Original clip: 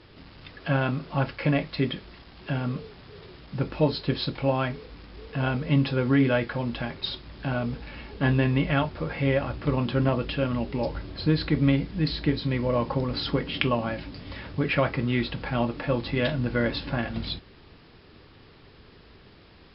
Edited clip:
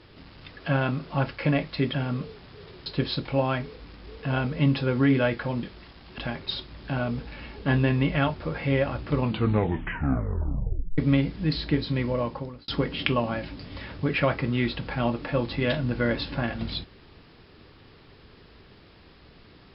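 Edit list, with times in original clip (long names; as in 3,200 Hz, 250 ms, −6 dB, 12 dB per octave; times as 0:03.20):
0:01.94–0:02.49: move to 0:06.73
0:03.41–0:03.96: remove
0:09.74: tape stop 1.79 s
0:12.59–0:13.23: fade out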